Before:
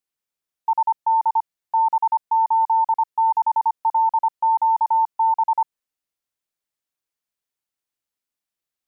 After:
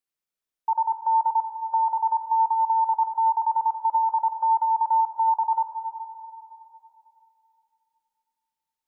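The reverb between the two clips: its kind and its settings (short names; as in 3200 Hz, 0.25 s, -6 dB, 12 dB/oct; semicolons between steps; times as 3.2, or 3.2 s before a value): digital reverb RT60 3 s, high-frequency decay 0.45×, pre-delay 20 ms, DRR 6.5 dB; gain -3.5 dB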